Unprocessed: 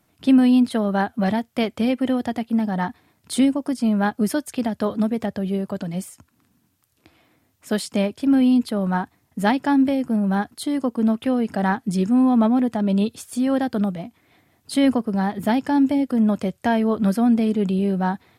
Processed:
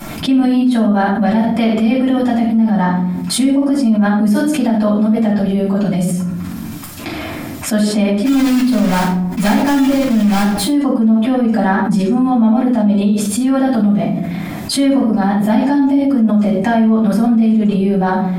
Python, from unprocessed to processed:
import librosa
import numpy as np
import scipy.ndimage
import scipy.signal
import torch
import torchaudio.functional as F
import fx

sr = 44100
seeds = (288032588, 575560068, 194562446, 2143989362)

y = fx.block_float(x, sr, bits=3, at=(8.24, 10.64), fade=0.02)
y = fx.room_shoebox(y, sr, seeds[0], volume_m3=510.0, walls='furnished', distance_m=8.5)
y = fx.env_flatten(y, sr, amount_pct=70)
y = F.gain(torch.from_numpy(y), -14.0).numpy()